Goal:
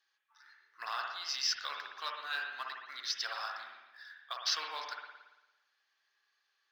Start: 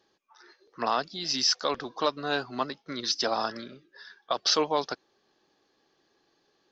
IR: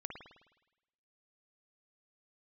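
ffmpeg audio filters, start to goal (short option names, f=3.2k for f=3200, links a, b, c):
-filter_complex "[0:a]highpass=f=1.6k:t=q:w=1.6,acrusher=bits=7:mode=log:mix=0:aa=0.000001[a];[1:a]atrim=start_sample=2205,asetrate=41454,aresample=44100[b];[a][b]afir=irnorm=-1:irlink=0,volume=-4.5dB"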